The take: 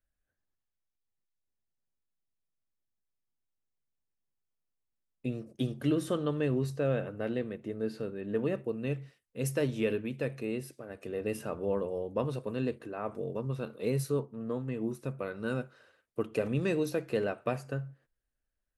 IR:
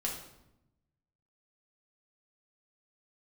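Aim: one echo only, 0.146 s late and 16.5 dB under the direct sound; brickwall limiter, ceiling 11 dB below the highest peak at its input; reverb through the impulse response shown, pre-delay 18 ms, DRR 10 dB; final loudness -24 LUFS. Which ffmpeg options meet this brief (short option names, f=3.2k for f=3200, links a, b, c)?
-filter_complex "[0:a]alimiter=level_in=4dB:limit=-24dB:level=0:latency=1,volume=-4dB,aecho=1:1:146:0.15,asplit=2[a][b];[1:a]atrim=start_sample=2205,adelay=18[c];[b][c]afir=irnorm=-1:irlink=0,volume=-13dB[d];[a][d]amix=inputs=2:normalize=0,volume=14dB"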